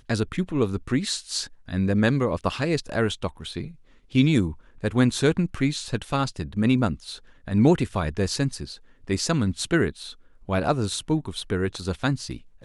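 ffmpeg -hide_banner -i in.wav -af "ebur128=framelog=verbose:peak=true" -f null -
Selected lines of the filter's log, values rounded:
Integrated loudness:
  I:         -24.9 LUFS
  Threshold: -35.4 LUFS
Loudness range:
  LRA:         2.6 LU
  Threshold: -45.1 LUFS
  LRA low:   -26.4 LUFS
  LRA high:  -23.8 LUFS
True peak:
  Peak:       -6.2 dBFS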